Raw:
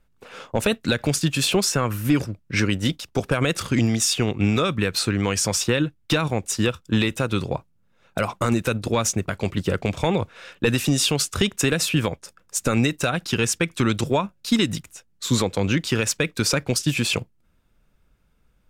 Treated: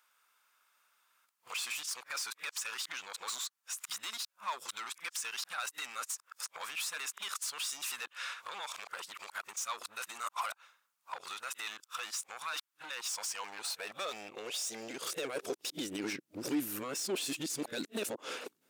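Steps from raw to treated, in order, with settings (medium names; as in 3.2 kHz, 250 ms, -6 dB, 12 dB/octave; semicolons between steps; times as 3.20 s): reverse the whole clip; treble shelf 3.1 kHz +11 dB; peak limiter -13 dBFS, peak gain reduction 10.5 dB; compression 6:1, threshold -29 dBFS, peak gain reduction 10.5 dB; hard clipper -29.5 dBFS, distortion -11 dB; high-pass sweep 1.1 kHz -> 310 Hz, 12.82–16.00 s; trim -4 dB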